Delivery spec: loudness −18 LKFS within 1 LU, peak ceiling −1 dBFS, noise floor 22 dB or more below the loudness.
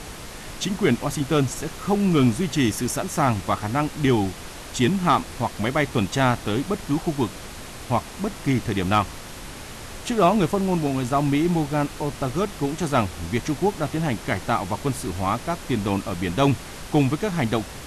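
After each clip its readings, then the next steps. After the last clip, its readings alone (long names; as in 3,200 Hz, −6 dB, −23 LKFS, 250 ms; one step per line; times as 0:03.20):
background noise floor −38 dBFS; target noise floor −46 dBFS; integrated loudness −23.5 LKFS; sample peak −7.5 dBFS; target loudness −18.0 LKFS
→ noise reduction from a noise print 8 dB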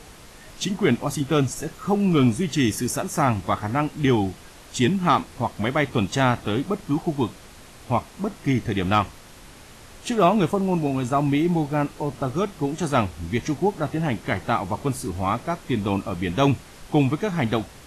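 background noise floor −45 dBFS; target noise floor −46 dBFS
→ noise reduction from a noise print 6 dB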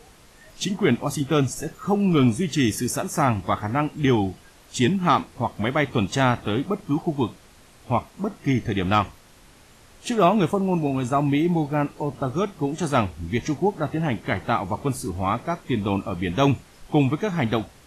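background noise floor −51 dBFS; integrated loudness −23.5 LKFS; sample peak −7.5 dBFS; target loudness −18.0 LKFS
→ level +5.5 dB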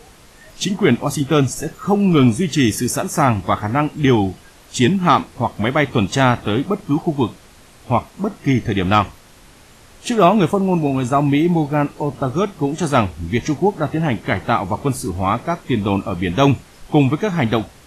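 integrated loudness −18.0 LKFS; sample peak −2.0 dBFS; background noise floor −46 dBFS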